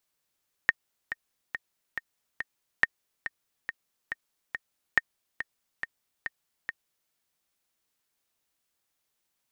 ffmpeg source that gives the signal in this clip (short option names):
-f lavfi -i "aevalsrc='pow(10,(-6.5-12*gte(mod(t,5*60/140),60/140))/20)*sin(2*PI*1840*mod(t,60/140))*exp(-6.91*mod(t,60/140)/0.03)':d=6.42:s=44100"